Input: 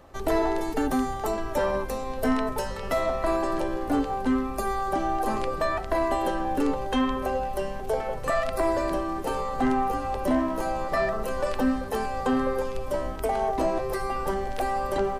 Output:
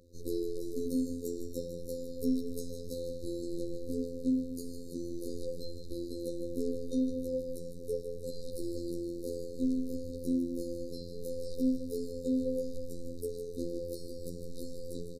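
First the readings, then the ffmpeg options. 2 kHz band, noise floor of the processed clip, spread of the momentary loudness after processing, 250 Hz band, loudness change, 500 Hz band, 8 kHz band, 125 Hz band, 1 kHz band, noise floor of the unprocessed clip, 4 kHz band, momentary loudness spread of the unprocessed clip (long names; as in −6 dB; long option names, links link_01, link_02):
below −40 dB, −42 dBFS, 10 LU, −6.0 dB, −9.5 dB, −10.0 dB, −7.5 dB, −7.5 dB, below −40 dB, −33 dBFS, −11.0 dB, 4 LU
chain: -af "aecho=1:1:156|312|468|624|780|936|1092:0.316|0.183|0.106|0.0617|0.0358|0.0208|0.012,afftfilt=real='hypot(re,im)*cos(PI*b)':imag='0':win_size=2048:overlap=0.75,afftfilt=real='re*(1-between(b*sr/4096,570,3700))':imag='im*(1-between(b*sr/4096,570,3700))':win_size=4096:overlap=0.75,volume=-4.5dB"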